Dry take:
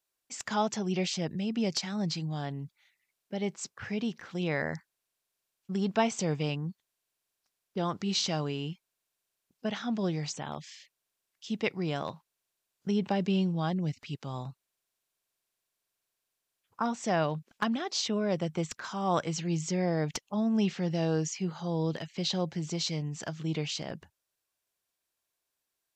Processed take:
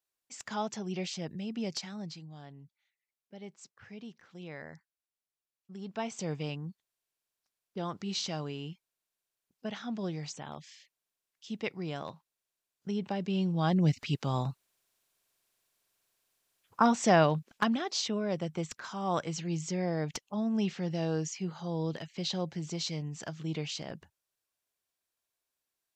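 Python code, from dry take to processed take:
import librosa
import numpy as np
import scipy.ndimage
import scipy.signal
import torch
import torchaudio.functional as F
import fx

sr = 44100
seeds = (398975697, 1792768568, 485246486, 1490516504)

y = fx.gain(x, sr, db=fx.line((1.81, -5.5), (2.26, -13.5), (5.77, -13.5), (6.27, -5.0), (13.27, -5.0), (13.86, 6.5), (16.99, 6.5), (18.23, -3.0)))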